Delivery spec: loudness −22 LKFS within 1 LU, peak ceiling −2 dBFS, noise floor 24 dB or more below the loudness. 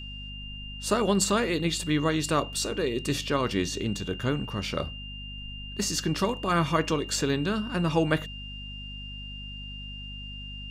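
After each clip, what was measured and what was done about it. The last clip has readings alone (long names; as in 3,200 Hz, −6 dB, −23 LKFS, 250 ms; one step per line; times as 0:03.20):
mains hum 50 Hz; hum harmonics up to 250 Hz; level of the hum −38 dBFS; interfering tone 2,800 Hz; level of the tone −40 dBFS; integrated loudness −29.0 LKFS; sample peak −9.0 dBFS; target loudness −22.0 LKFS
→ mains-hum notches 50/100/150/200/250 Hz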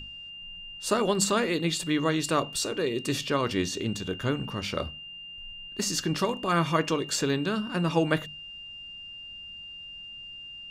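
mains hum none found; interfering tone 2,800 Hz; level of the tone −40 dBFS
→ notch filter 2,800 Hz, Q 30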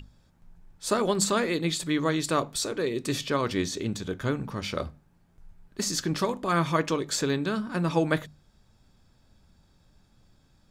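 interfering tone none found; integrated loudness −28.0 LKFS; sample peak −10.0 dBFS; target loudness −22.0 LKFS
→ level +6 dB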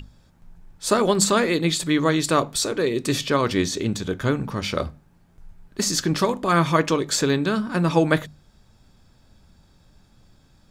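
integrated loudness −22.0 LKFS; sample peak −4.0 dBFS; background noise floor −57 dBFS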